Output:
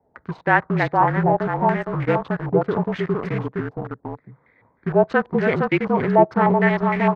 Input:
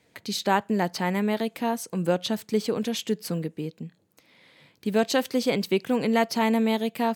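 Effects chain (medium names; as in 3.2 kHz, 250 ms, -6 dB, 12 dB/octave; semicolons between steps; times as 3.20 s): local Wiener filter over 15 samples; delay 463 ms -4 dB; frequency shift -37 Hz; in parallel at -3 dB: bit crusher 5-bit; on the sum: step-sequenced low-pass 6.5 Hz 810–2100 Hz; trim -2 dB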